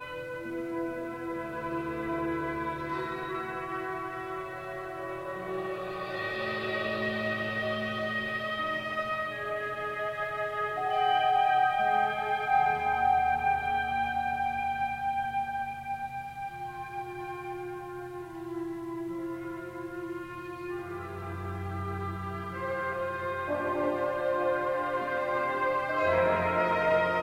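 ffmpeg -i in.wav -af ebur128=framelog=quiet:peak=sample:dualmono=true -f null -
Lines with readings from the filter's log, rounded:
Integrated loudness:
  I:         -28.1 LUFS
  Threshold: -38.1 LUFS
Loudness range:
  LRA:        10.9 LU
  Threshold: -48.3 LUFS
  LRA low:   -34.9 LUFS
  LRA high:  -24.0 LUFS
Sample peak:
  Peak:      -13.8 dBFS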